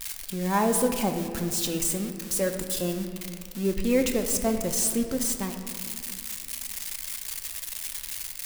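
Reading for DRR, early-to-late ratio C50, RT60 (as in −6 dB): 5.0 dB, 7.0 dB, 2.2 s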